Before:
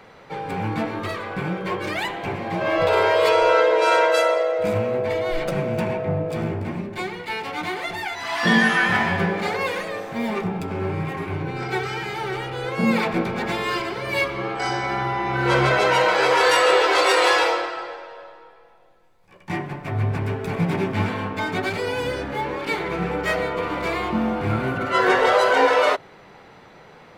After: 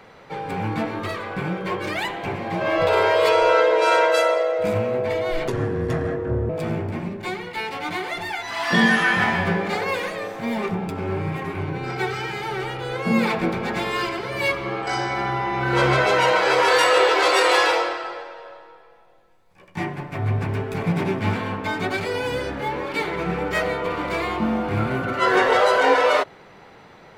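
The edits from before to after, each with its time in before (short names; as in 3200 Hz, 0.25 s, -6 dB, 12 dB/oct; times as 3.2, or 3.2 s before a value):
5.48–6.22 speed 73%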